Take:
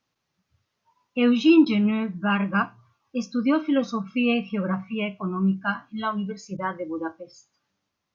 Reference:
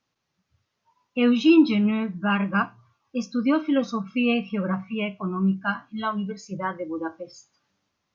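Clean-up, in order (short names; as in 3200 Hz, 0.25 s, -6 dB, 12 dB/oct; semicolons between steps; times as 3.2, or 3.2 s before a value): interpolate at 1.65/6.57, 10 ms; gain correction +3.5 dB, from 7.12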